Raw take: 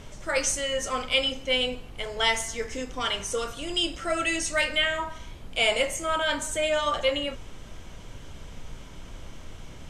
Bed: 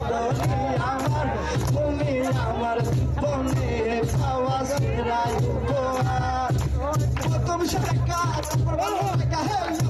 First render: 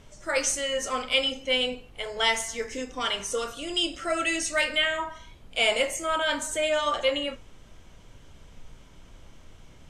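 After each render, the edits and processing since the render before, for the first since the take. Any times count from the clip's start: noise print and reduce 8 dB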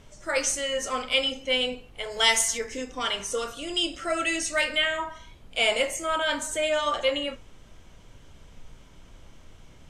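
2.1–2.57 high shelf 4700 Hz -> 3000 Hz +11 dB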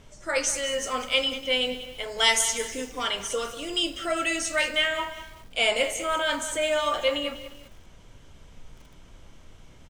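echo 0.345 s -22.5 dB; lo-fi delay 0.195 s, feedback 35%, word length 7-bit, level -12.5 dB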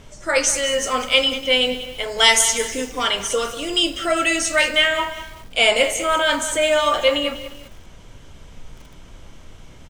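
gain +7.5 dB; limiter -1 dBFS, peak gain reduction 1 dB

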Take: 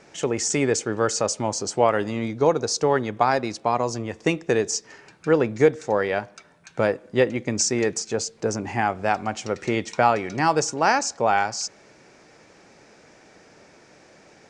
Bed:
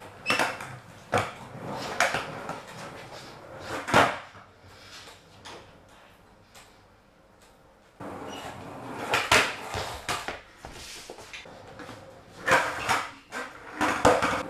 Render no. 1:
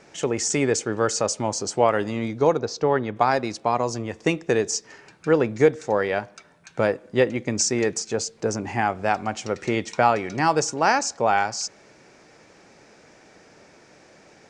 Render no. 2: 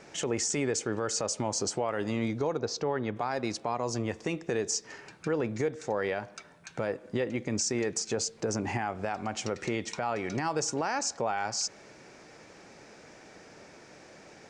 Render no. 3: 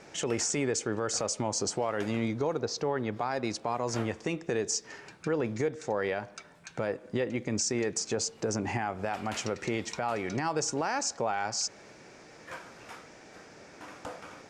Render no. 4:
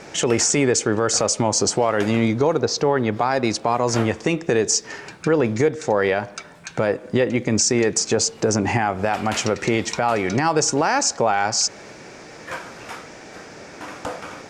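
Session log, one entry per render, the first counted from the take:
2.57–3.16 air absorption 160 m
compressor 2:1, threshold -27 dBFS, peak gain reduction 9 dB; limiter -20 dBFS, peak gain reduction 10 dB
add bed -22 dB
gain +11.5 dB

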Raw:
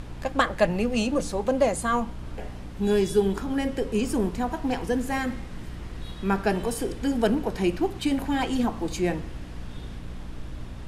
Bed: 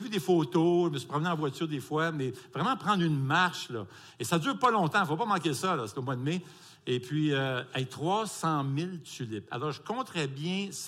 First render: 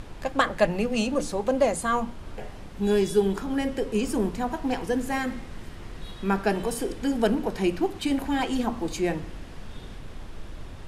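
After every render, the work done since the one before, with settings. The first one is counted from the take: notches 60/120/180/240/300 Hz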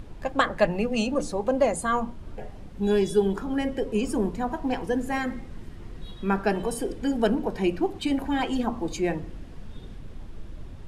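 denoiser 8 dB, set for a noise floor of -41 dBFS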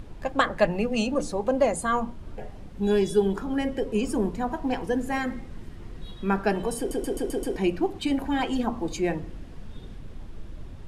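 6.78 stutter in place 0.13 s, 6 plays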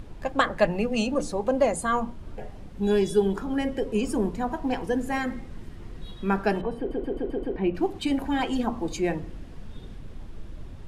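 6.61–7.75 air absorption 450 m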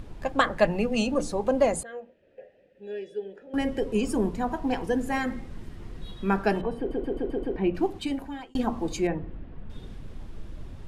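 1.83–3.54 vowel filter e; 7.82–8.55 fade out linear; 9.07–9.7 air absorption 430 m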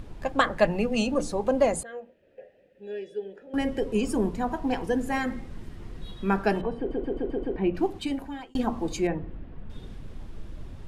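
6.67–7.77 air absorption 74 m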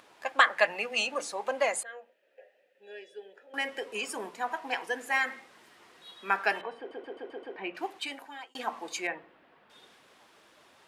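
dynamic EQ 2100 Hz, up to +7 dB, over -45 dBFS, Q 1.3; HPF 800 Hz 12 dB/oct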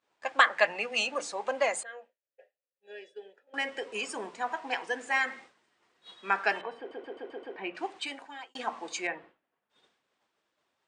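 steep low-pass 9200 Hz 72 dB/oct; expander -47 dBFS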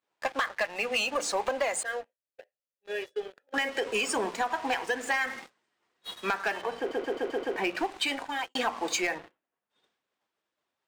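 compressor 8:1, threshold -35 dBFS, peak gain reduction 19 dB; sample leveller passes 3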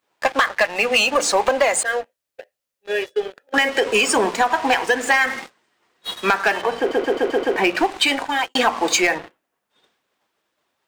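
gain +11.5 dB

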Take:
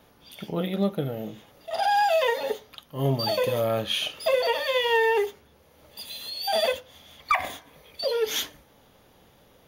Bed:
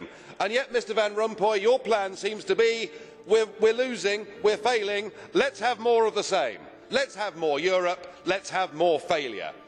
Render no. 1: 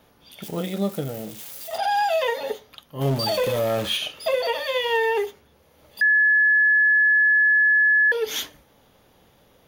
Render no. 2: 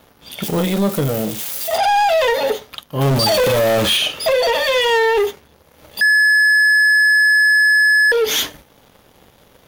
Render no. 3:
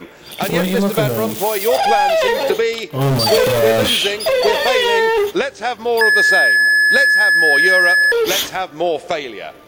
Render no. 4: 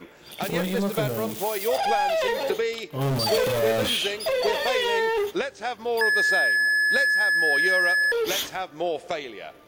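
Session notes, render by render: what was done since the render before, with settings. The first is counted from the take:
0.42–1.78 switching spikes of -29.5 dBFS; 3.01–3.97 zero-crossing step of -28.5 dBFS; 6.01–8.12 bleep 1710 Hz -14 dBFS
in parallel at -0.5 dB: limiter -21 dBFS, peak gain reduction 8 dB; on the sum: sample leveller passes 2
add bed +4.5 dB
gain -9 dB

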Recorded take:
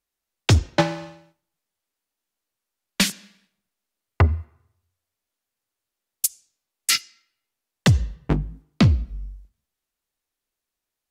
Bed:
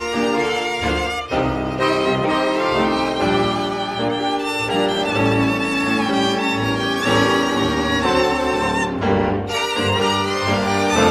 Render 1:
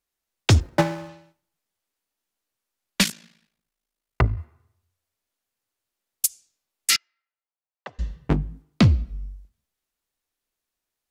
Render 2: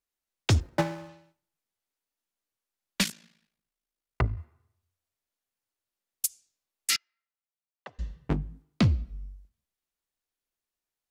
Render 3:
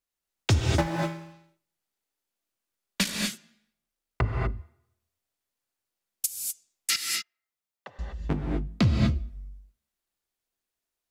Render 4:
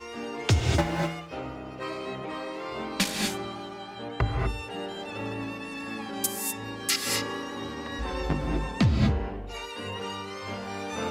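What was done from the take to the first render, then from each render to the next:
0.6–1.09 median filter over 15 samples; 3.03–4.38 ring modulator 27 Hz; 6.96–7.99 ladder band-pass 930 Hz, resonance 25%
gain -6.5 dB
non-linear reverb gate 0.27 s rising, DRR 0.5 dB
add bed -17 dB

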